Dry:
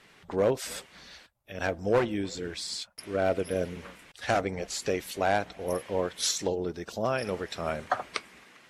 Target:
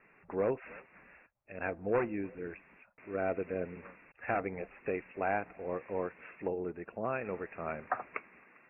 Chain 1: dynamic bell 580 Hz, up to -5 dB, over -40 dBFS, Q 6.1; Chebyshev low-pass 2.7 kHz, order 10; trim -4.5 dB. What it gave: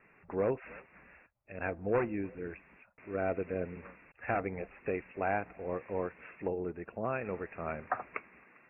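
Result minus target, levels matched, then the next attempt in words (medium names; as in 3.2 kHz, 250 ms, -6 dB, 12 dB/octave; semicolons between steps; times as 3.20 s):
125 Hz band +3.0 dB
dynamic bell 580 Hz, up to -5 dB, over -40 dBFS, Q 6.1; Chebyshev low-pass 2.7 kHz, order 10; peaking EQ 67 Hz -6 dB 2 oct; trim -4.5 dB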